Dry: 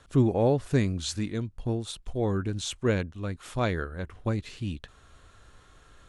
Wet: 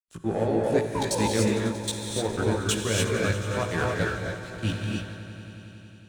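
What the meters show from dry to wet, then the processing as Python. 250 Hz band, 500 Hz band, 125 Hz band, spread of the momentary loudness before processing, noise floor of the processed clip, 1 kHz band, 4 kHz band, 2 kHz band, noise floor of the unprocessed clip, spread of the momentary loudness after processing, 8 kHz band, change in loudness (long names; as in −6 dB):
+1.0 dB, +3.0 dB, 0.0 dB, 12 LU, −49 dBFS, +5.0 dB, +6.0 dB, +7.5 dB, −58 dBFS, 15 LU, +8.5 dB, +2.5 dB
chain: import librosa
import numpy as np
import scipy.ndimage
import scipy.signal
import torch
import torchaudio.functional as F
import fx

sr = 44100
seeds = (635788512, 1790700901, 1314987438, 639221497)

y = fx.tilt_eq(x, sr, slope=2.0)
y = fx.level_steps(y, sr, step_db=18)
y = fx.spec_paint(y, sr, seeds[0], shape='fall', start_s=0.88, length_s=0.37, low_hz=370.0, high_hz=1300.0, level_db=-40.0)
y = fx.power_curve(y, sr, exponent=0.5)
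y = fx.step_gate(y, sr, bpm=190, pattern='.x.xxxx.xx.', floor_db=-60.0, edge_ms=4.5)
y = fx.cheby_harmonics(y, sr, harmonics=(3, 5, 7), levels_db=(-33, -28, -16), full_scale_db=-21.5)
y = fx.doubler(y, sr, ms=18.0, db=-3)
y = fx.echo_swell(y, sr, ms=91, loudest=5, wet_db=-16.0)
y = fx.rev_gated(y, sr, seeds[1], gate_ms=320, shape='rising', drr_db=-1.5)
y = fx.band_widen(y, sr, depth_pct=40)
y = y * 10.0 ** (2.0 / 20.0)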